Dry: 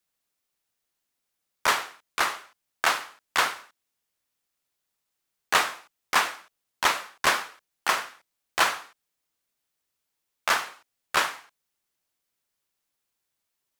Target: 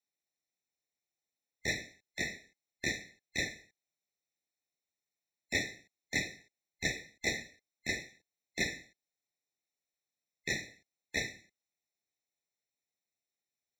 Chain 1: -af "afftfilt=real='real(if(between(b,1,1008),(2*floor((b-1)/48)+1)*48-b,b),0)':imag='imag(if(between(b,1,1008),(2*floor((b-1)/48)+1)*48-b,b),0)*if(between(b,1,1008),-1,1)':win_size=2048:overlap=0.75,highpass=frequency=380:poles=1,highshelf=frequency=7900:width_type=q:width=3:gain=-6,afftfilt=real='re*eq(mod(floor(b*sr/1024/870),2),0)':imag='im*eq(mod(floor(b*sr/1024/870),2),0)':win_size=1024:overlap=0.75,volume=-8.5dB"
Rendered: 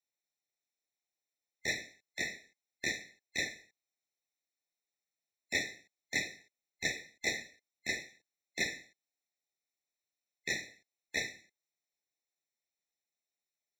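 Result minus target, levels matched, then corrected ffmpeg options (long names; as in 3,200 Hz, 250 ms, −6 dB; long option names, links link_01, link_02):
125 Hz band −6.5 dB
-af "afftfilt=real='real(if(between(b,1,1008),(2*floor((b-1)/48)+1)*48-b,b),0)':imag='imag(if(between(b,1,1008),(2*floor((b-1)/48)+1)*48-b,b),0)*if(between(b,1,1008),-1,1)':win_size=2048:overlap=0.75,highpass=frequency=120:poles=1,highshelf=frequency=7900:width_type=q:width=3:gain=-6,afftfilt=real='re*eq(mod(floor(b*sr/1024/870),2),0)':imag='im*eq(mod(floor(b*sr/1024/870),2),0)':win_size=1024:overlap=0.75,volume=-8.5dB"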